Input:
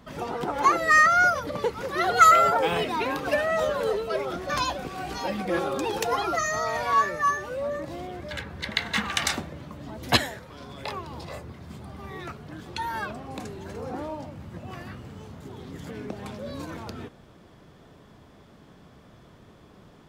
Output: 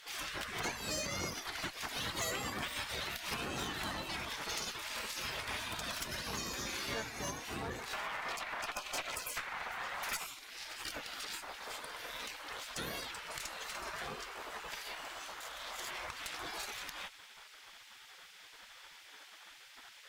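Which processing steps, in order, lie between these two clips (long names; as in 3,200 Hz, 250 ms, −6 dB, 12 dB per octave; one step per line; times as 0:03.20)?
gate on every frequency bin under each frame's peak −20 dB weak
0:07.93–0:10.27: flat-topped bell 1,200 Hz +10 dB 2.4 octaves
downward compressor 3 to 1, threshold −49 dBFS, peak gain reduction 17 dB
tube saturation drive 43 dB, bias 0.55
level +12.5 dB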